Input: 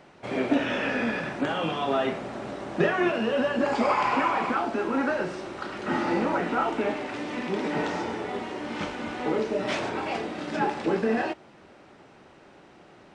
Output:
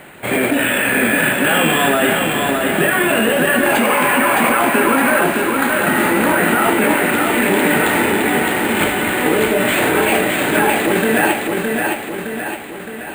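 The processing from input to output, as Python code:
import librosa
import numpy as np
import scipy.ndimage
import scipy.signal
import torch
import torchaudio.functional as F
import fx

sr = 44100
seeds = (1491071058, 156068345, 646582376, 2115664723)

p1 = fx.band_shelf(x, sr, hz=2500.0, db=8.5, octaves=1.7)
p2 = fx.over_compress(p1, sr, threshold_db=-26.0, ratio=-0.5)
p3 = p1 + (p2 * librosa.db_to_amplitude(2.0))
p4 = fx.quant_float(p3, sr, bits=2)
p5 = fx.air_absorb(p4, sr, metres=200.0)
p6 = p5 + fx.echo_feedback(p5, sr, ms=614, feedback_pct=53, wet_db=-3.5, dry=0)
p7 = np.repeat(scipy.signal.resample_poly(p6, 1, 4), 4)[:len(p6)]
y = p7 * librosa.db_to_amplitude(4.0)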